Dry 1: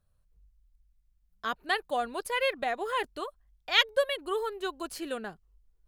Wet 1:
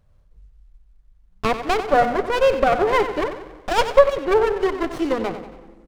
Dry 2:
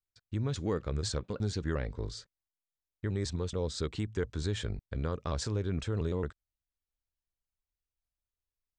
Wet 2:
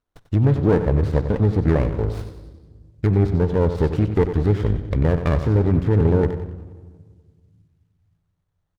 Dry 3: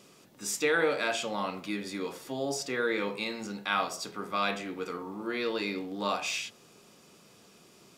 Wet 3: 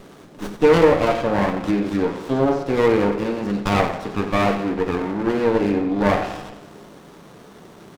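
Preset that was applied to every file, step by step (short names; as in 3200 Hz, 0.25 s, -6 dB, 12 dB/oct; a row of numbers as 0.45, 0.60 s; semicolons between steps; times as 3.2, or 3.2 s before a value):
treble ducked by the level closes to 1300 Hz, closed at -30.5 dBFS; Chebyshev low-pass 8300 Hz, order 2; feedback echo 93 ms, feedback 48%, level -11 dB; shoebox room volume 1900 m³, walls mixed, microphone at 0.35 m; running maximum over 17 samples; match loudness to -20 LUFS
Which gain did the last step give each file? +16.0, +16.0, +15.5 dB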